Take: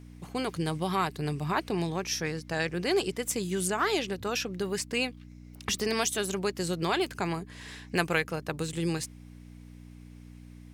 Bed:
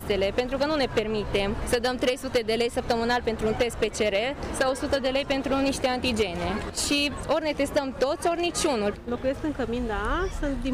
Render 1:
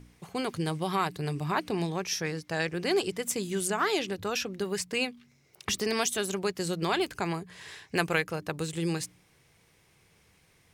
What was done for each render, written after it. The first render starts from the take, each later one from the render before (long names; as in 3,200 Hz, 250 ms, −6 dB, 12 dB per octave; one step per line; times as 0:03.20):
hum removal 60 Hz, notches 5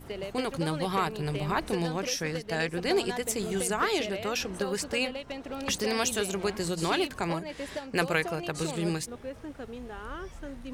mix in bed −12.5 dB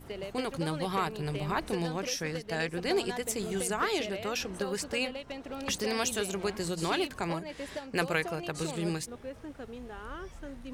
level −2.5 dB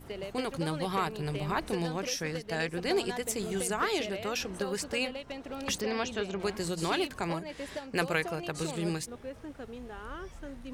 0:05.81–0:06.40: high-frequency loss of the air 170 metres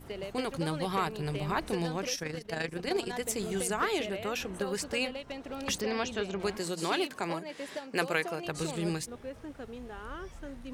0:02.15–0:03.13: amplitude modulation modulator 26 Hz, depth 40%
0:03.85–0:04.67: parametric band 5,100 Hz −7 dB 0.57 octaves
0:06.58–0:08.45: high-pass filter 200 Hz